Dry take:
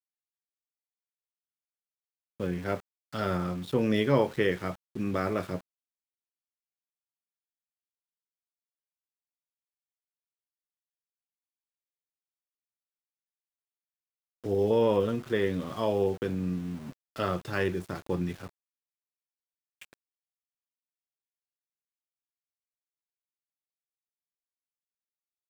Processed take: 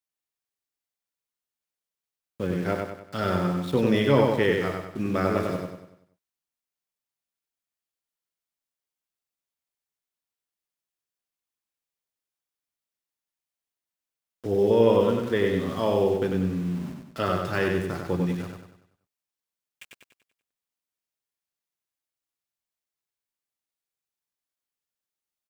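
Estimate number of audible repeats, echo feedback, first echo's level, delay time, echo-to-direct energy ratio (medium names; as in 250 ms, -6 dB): 5, 44%, -4.0 dB, 96 ms, -3.0 dB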